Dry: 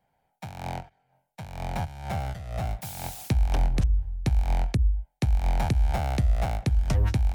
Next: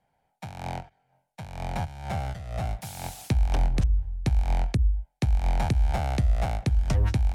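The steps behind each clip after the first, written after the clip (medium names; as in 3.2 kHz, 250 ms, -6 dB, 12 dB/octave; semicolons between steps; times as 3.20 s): low-pass 12 kHz 12 dB/octave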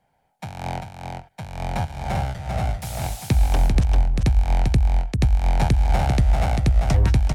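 delay 394 ms -4.5 dB; trim +5 dB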